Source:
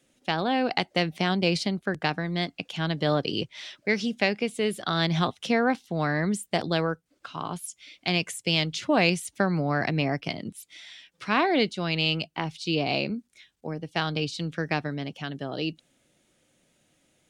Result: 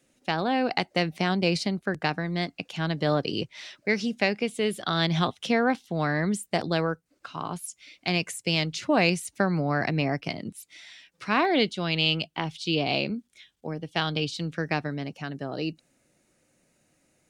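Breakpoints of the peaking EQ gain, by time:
peaking EQ 3.3 kHz 0.25 oct
-5.5 dB
from 4.43 s +1.5 dB
from 6.39 s -5.5 dB
from 11.45 s +5 dB
from 14.37 s -5.5 dB
from 15.07 s -14.5 dB

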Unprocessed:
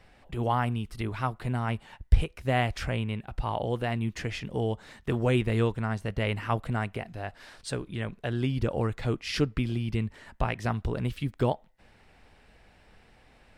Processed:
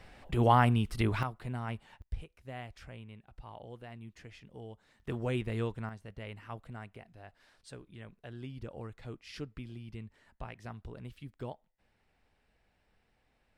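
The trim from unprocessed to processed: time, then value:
+3 dB
from 1.23 s -8 dB
from 2.02 s -18 dB
from 5.00 s -8.5 dB
from 5.89 s -15.5 dB

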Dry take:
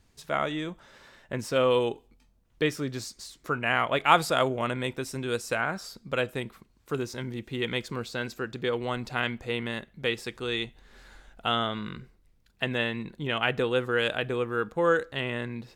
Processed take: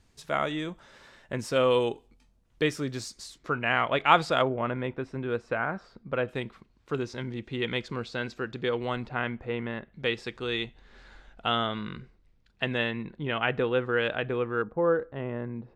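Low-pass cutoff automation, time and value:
11 kHz
from 3.38 s 4.7 kHz
from 4.42 s 1.8 kHz
from 6.28 s 4.7 kHz
from 9.07 s 1.9 kHz
from 9.93 s 4.9 kHz
from 12.91 s 2.7 kHz
from 14.62 s 1 kHz

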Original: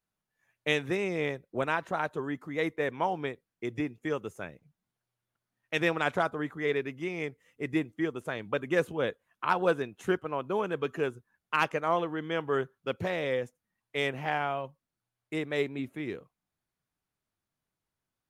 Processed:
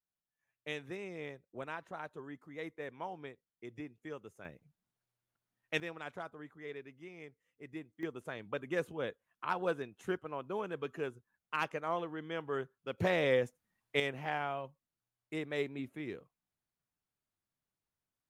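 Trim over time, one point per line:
-13 dB
from 4.45 s -4 dB
from 5.80 s -16 dB
from 8.03 s -8 dB
from 12.98 s +1 dB
from 14.00 s -6 dB

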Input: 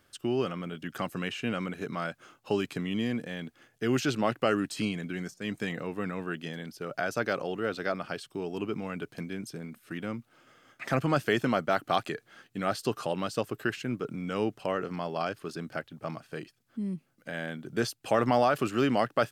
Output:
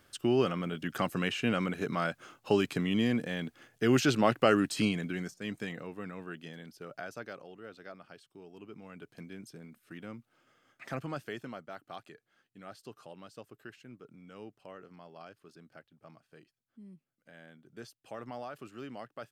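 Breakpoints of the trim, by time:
4.87 s +2 dB
5.96 s -8 dB
6.83 s -8 dB
7.48 s -16.5 dB
8.60 s -16.5 dB
9.24 s -9 dB
10.87 s -9 dB
11.68 s -18 dB

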